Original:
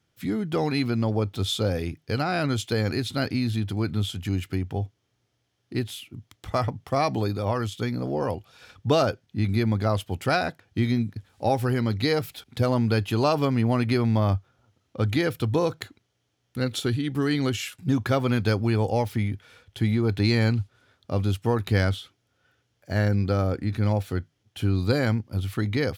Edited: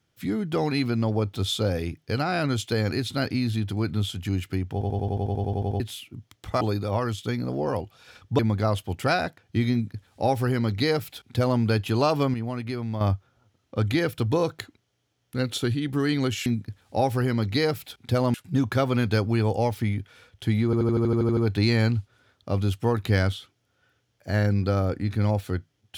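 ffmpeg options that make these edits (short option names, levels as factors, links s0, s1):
-filter_complex "[0:a]asplit=28[s0][s1][s2][s3][s4][s5][s6][s7][s8][s9][s10][s11][s12][s13][s14][s15][s16][s17][s18][s19][s20][s21][s22][s23][s24][s25][s26][s27];[s0]atrim=end=4.812[s28];[s1]atrim=start=4.718:end=4.812[s29];[s2]atrim=start=4.718:end=4.812[s30];[s3]atrim=start=4.718:end=4.812[s31];[s4]atrim=start=4.718:end=4.812[s32];[s5]atrim=start=4.718:end=4.812[s33];[s6]atrim=start=4.718:end=4.812[s34];[s7]atrim=start=4.718:end=4.812[s35];[s8]atrim=start=4.718:end=4.812[s36];[s9]atrim=start=4.718:end=4.812[s37];[s10]atrim=start=4.718:end=4.812[s38];[s11]atrim=start=4.718:end=4.812[s39];[s12]atrim=start=5.798:end=6.612[s40];[s13]atrim=start=7.148:end=8.932[s41];[s14]atrim=start=9.608:end=13.562[s42];[s15]atrim=start=13.558:end=14.232,asetpts=PTS-STARTPTS,volume=0.398[s43];[s16]atrim=start=14.228:end=17.682[s44];[s17]atrim=start=10.938:end=12.822[s45];[s18]atrim=start=17.678:end=20.072[s46];[s19]atrim=start=19.988:end=20.072[s47];[s20]atrim=start=19.988:end=20.072[s48];[s21]atrim=start=19.988:end=20.072[s49];[s22]atrim=start=19.988:end=20.072[s50];[s23]atrim=start=19.988:end=20.072[s51];[s24]atrim=start=19.988:end=20.072[s52];[s25]atrim=start=19.988:end=20.072[s53];[s26]atrim=start=19.988:end=20.072[s54];[s27]atrim=start=19.988[s55];[s28][s29]acrossfade=d=0.004:c1=hsin:c2=hsin[s56];[s56][s30]acrossfade=d=0.004:c1=hsin:c2=hsin[s57];[s57][s31]acrossfade=d=0.004:c1=hsin:c2=hsin[s58];[s58][s32]acrossfade=d=0.004:c1=hsin:c2=hsin[s59];[s59][s33]acrossfade=d=0.004:c1=hsin:c2=hsin[s60];[s60][s34]acrossfade=d=0.004:c1=hsin:c2=hsin[s61];[s61][s35]acrossfade=d=0.004:c1=hsin:c2=hsin[s62];[s62][s36]acrossfade=d=0.004:c1=hsin:c2=hsin[s63];[s63][s37]acrossfade=d=0.004:c1=hsin:c2=hsin[s64];[s64][s38]acrossfade=d=0.004:c1=hsin:c2=hsin[s65];[s65][s39]acrossfade=d=0.004:c1=hsin:c2=hsin[s66];[s66][s40]acrossfade=d=0.004:c1=hsin:c2=hsin[s67];[s67][s41]acrossfade=d=0.004:c1=hsin:c2=hsin[s68];[s68][s42]acrossfade=d=0.004:c1=hsin:c2=hsin[s69];[s69][s43]acrossfade=d=0.004:c1=hsin:c2=hsin[s70];[s70][s44]acrossfade=d=0.004:c1=hsin:c2=hsin[s71];[s71][s45]acrossfade=d=0.004:c1=hsin:c2=hsin[s72];[s72][s46]acrossfade=d=0.004:c1=hsin:c2=hsin[s73];[s73][s47]acrossfade=d=0.004:c1=hsin:c2=hsin[s74];[s74][s48]acrossfade=d=0.004:c1=hsin:c2=hsin[s75];[s75][s49]acrossfade=d=0.004:c1=hsin:c2=hsin[s76];[s76][s50]acrossfade=d=0.004:c1=hsin:c2=hsin[s77];[s77][s51]acrossfade=d=0.004:c1=hsin:c2=hsin[s78];[s78][s52]acrossfade=d=0.004:c1=hsin:c2=hsin[s79];[s79][s53]acrossfade=d=0.004:c1=hsin:c2=hsin[s80];[s80][s54]acrossfade=d=0.004:c1=hsin:c2=hsin[s81];[s81][s55]acrossfade=d=0.004:c1=hsin:c2=hsin"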